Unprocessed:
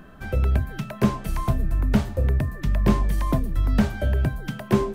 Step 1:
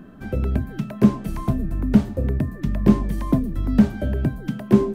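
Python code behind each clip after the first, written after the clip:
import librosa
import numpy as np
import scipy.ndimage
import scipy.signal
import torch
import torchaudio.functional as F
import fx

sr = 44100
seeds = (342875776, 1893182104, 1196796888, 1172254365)

y = fx.peak_eq(x, sr, hz=250.0, db=12.5, octaves=1.7)
y = y * 10.0 ** (-4.5 / 20.0)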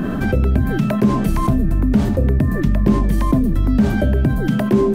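y = fx.env_flatten(x, sr, amount_pct=70)
y = y * 10.0 ** (-2.0 / 20.0)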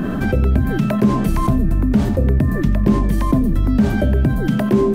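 y = x + 10.0 ** (-19.0 / 20.0) * np.pad(x, (int(91 * sr / 1000.0), 0))[:len(x)]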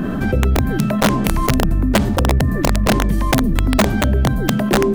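y = (np.mod(10.0 ** (7.0 / 20.0) * x + 1.0, 2.0) - 1.0) / 10.0 ** (7.0 / 20.0)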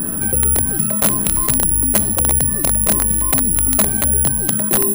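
y = (np.kron(x[::4], np.eye(4)[0]) * 4)[:len(x)]
y = y * 10.0 ** (-6.5 / 20.0)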